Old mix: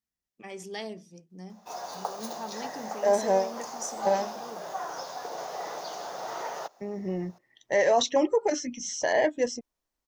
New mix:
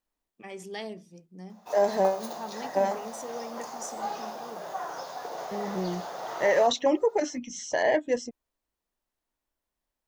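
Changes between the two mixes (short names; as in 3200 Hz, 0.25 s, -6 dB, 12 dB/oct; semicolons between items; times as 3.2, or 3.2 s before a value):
second voice: entry -1.30 s; master: add bell 5700 Hz -5 dB 0.58 oct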